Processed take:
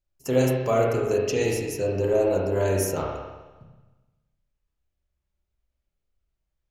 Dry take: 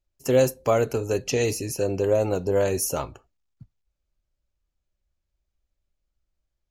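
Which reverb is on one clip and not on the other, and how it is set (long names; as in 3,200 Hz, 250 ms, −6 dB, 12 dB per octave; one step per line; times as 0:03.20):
spring reverb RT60 1.2 s, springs 31/43 ms, chirp 55 ms, DRR −2.5 dB
level −4 dB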